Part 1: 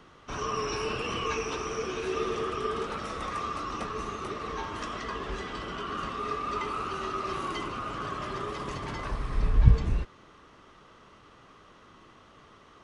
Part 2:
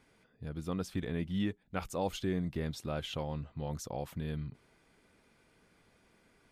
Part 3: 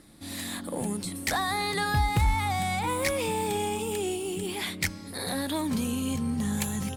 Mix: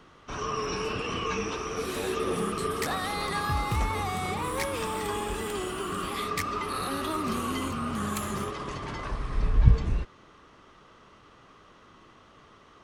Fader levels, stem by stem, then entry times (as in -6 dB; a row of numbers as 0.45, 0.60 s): 0.0, -6.5, -4.5 dB; 0.00, 0.00, 1.55 s